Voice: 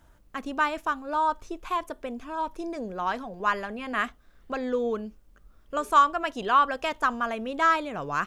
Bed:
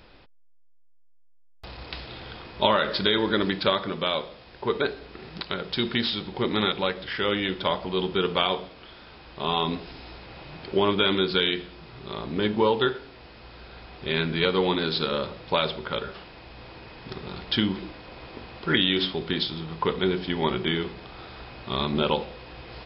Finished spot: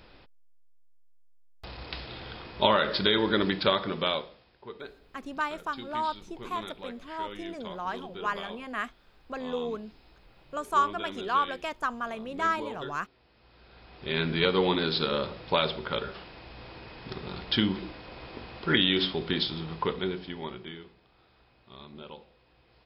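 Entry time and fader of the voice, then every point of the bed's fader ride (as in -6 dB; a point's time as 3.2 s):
4.80 s, -5.5 dB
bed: 4.1 s -1.5 dB
4.58 s -17 dB
13.26 s -17 dB
14.28 s -1.5 dB
19.7 s -1.5 dB
21.03 s -21 dB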